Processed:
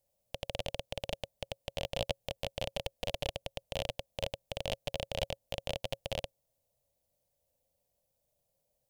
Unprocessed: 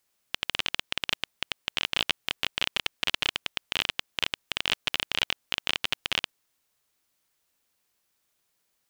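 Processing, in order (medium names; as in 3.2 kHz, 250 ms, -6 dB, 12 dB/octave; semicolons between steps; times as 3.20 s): FFT filter 120 Hz 0 dB, 380 Hz -17 dB, 550 Hz +5 dB, 1.3 kHz -28 dB, 2.3 kHz -22 dB, 12 kHz -13 dB; trim +7 dB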